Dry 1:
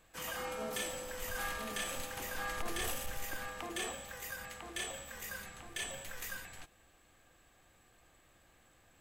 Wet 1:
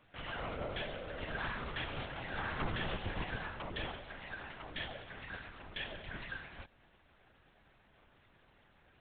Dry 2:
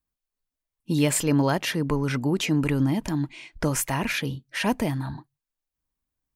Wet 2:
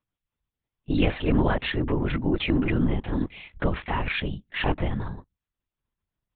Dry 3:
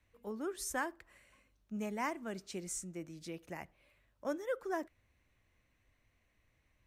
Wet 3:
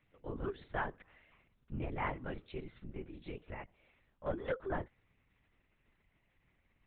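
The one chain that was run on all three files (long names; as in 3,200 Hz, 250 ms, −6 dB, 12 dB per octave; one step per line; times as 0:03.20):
linear-prediction vocoder at 8 kHz whisper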